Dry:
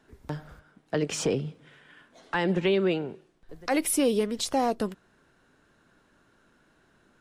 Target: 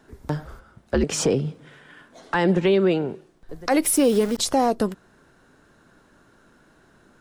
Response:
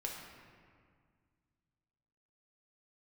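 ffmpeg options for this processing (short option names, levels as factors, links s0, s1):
-filter_complex "[0:a]asettb=1/sr,asplit=3[s0][s1][s2];[s0]atrim=end=0.454[s3];[s1]atrim=start=0.45:end=1.04,asetpts=PTS-STARTPTS,afade=t=in:d=0.004:c=qsin,afade=t=out:st=0.586:d=0.004:c=qsin,afreqshift=-87[s4];[s2]atrim=start=1.036[s5];[s3][s4]acrossfade=d=0.004:c1=hsin:c2=qsin[s6];[s6][s5]acrossfade=d=0.004:c1=qsin:c2=hsin,asplit=3[s7][s8][s9];[s7]afade=t=out:st=3.84:d=0.02[s10];[s8]aeval=exprs='val(0)*gte(abs(val(0)),0.0141)':c=same,afade=t=in:st=3.84:d=0.02,afade=t=out:st=4.37:d=0.02[s11];[s9]afade=t=in:st=4.37:d=0.02[s12];[s10][s11][s12]amix=inputs=3:normalize=0,equalizer=f=2700:t=o:w=1.2:g=-4.5,alimiter=limit=0.119:level=0:latency=1:release=181,volume=2.51"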